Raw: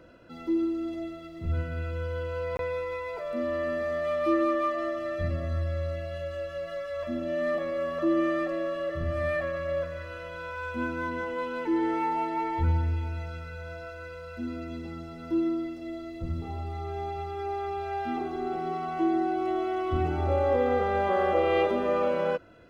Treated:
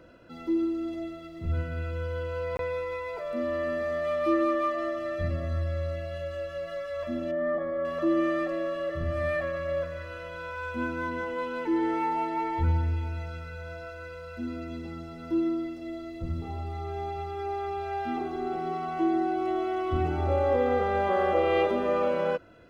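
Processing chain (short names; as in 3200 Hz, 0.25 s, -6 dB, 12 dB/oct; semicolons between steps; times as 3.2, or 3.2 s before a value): 7.31–7.85 polynomial smoothing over 41 samples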